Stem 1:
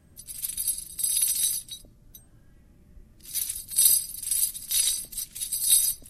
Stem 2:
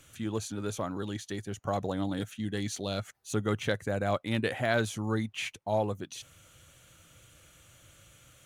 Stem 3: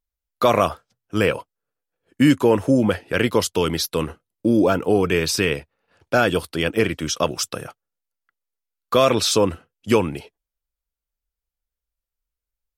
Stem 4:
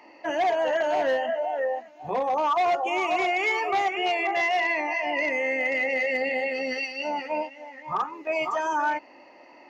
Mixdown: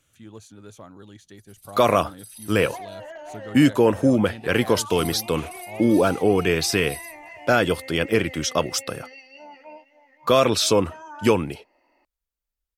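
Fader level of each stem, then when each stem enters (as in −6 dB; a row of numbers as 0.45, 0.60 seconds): −19.0, −9.5, −1.0, −14.5 decibels; 1.20, 0.00, 1.35, 2.35 seconds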